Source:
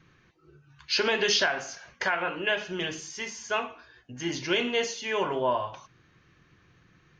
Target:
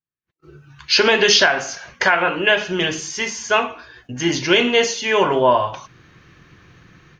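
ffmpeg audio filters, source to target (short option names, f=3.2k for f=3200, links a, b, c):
-af "dynaudnorm=f=210:g=3:m=12.5dB,agate=range=-39dB:threshold=-51dB:ratio=16:detection=peak"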